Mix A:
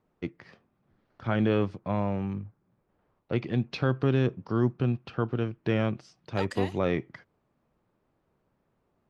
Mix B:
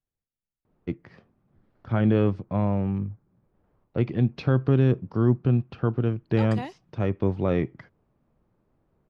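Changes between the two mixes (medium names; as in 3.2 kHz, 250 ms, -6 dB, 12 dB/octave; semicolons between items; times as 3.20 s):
first voice: entry +0.65 s; master: add tilt EQ -2 dB/octave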